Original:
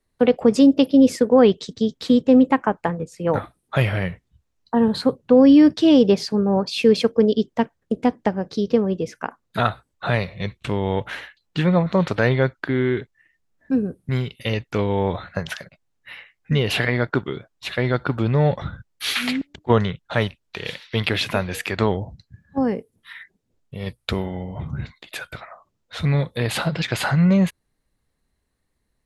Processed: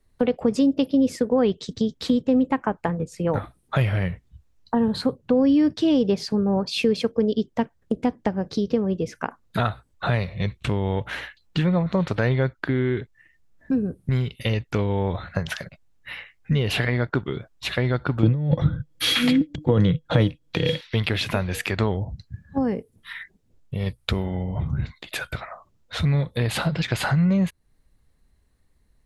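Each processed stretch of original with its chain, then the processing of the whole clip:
0:18.23–0:20.81: parametric band 150 Hz +14 dB 0.69 octaves + compressor whose output falls as the input rises −15 dBFS + hollow resonant body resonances 310/490/3,300 Hz, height 16 dB, ringing for 95 ms
whole clip: low-shelf EQ 120 Hz +10 dB; downward compressor 2 to 1, threshold −28 dBFS; level +3 dB

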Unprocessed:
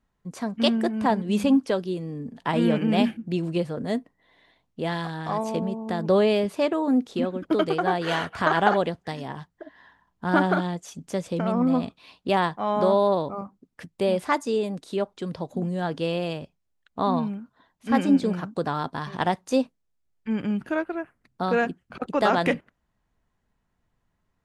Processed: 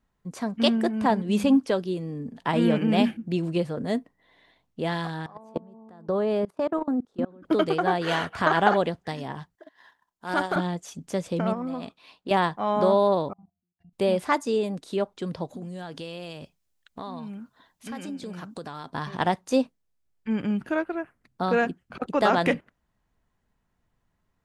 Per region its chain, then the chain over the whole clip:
0:05.26–0:07.45: high shelf with overshoot 1,800 Hz −7.5 dB, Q 1.5 + output level in coarse steps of 24 dB
0:09.55–0:10.56: bass and treble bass −13 dB, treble +10 dB + transient designer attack −7 dB, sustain −11 dB
0:11.53–0:12.31: low-shelf EQ 220 Hz −11 dB + downward compressor 5 to 1, threshold −28 dBFS + one half of a high-frequency compander decoder only
0:13.33–0:13.93: phaser with its sweep stopped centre 2,100 Hz, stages 8 + resonances in every octave F, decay 0.23 s + output level in coarse steps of 17 dB
0:15.53–0:18.90: high-shelf EQ 2,700 Hz +9 dB + downward compressor 4 to 1, threshold −35 dBFS
whole clip: no processing

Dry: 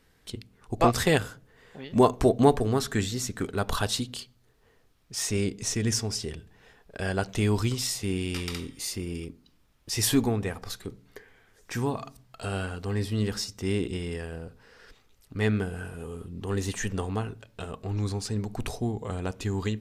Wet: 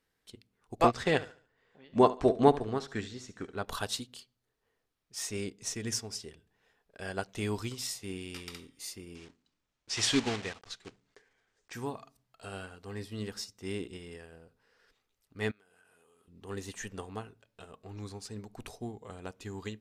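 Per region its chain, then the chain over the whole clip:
0:00.91–0:03.65: high-frequency loss of the air 96 metres + repeating echo 71 ms, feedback 40%, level −12.5 dB
0:09.15–0:11.73: one scale factor per block 3 bits + dynamic equaliser 2,800 Hz, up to +6 dB, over −45 dBFS, Q 0.78 + low-pass filter 7,700 Hz 24 dB per octave
0:15.51–0:16.28: high-pass filter 970 Hz 6 dB per octave + downward compressor 10 to 1, threshold −46 dBFS
whole clip: low-shelf EQ 190 Hz −8.5 dB; expander for the loud parts 1.5 to 1, over −44 dBFS

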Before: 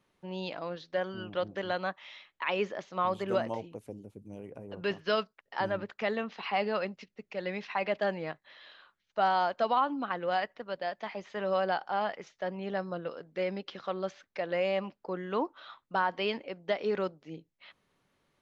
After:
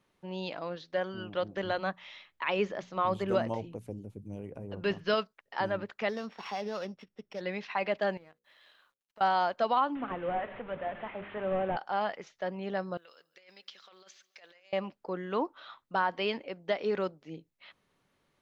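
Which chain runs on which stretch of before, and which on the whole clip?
0:01.57–0:05.14: low-shelf EQ 140 Hz +11.5 dB + mains-hum notches 60/120/180/240 Hz
0:06.09–0:07.41: samples sorted by size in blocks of 8 samples + downward compressor 2 to 1, threshold −33 dBFS + high-frequency loss of the air 190 metres
0:08.17–0:09.21: mu-law and A-law mismatch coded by A + downward compressor 5 to 1, threshold −53 dBFS + mains-hum notches 60/120/180/240/300/360/420/480/540 Hz
0:09.95–0:11.77: linear delta modulator 16 kbit/s, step −38 dBFS + high-shelf EQ 2,400 Hz −7.5 dB + hum removal 67.51 Hz, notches 9
0:12.97–0:14.73: compressor whose output falls as the input rises −35 dBFS, ratio −0.5 + first difference + repeating echo 142 ms, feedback 57%, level −22 dB
whole clip: no processing

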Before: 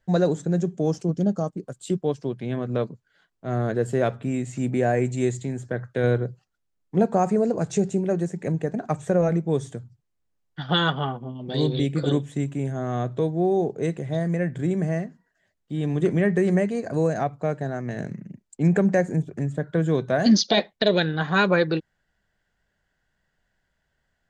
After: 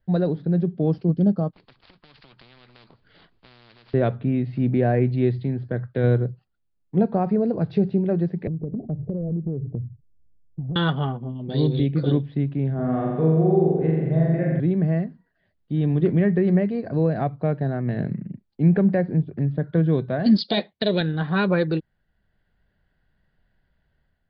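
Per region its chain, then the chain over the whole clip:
0:01.53–0:03.94: gap after every zero crossing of 0.073 ms + downward compressor 4 to 1, threshold −35 dBFS + every bin compressed towards the loudest bin 10 to 1
0:08.47–0:10.76: inverse Chebyshev low-pass filter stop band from 1,800 Hz, stop band 60 dB + low-shelf EQ 91 Hz +11 dB + downward compressor 10 to 1, threshold −29 dBFS
0:12.74–0:14.60: parametric band 3,900 Hz −14.5 dB 0.65 octaves + mains-hum notches 60/120/180/240/300/360 Hz + flutter between parallel walls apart 7.5 metres, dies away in 1.4 s
0:20.38–0:21.01: high-pass filter 62 Hz + high-shelf EQ 3,500 Hz +7.5 dB
whole clip: Butterworth low-pass 4,800 Hz 96 dB per octave; low-shelf EQ 370 Hz +10 dB; automatic gain control gain up to 6 dB; level −7 dB

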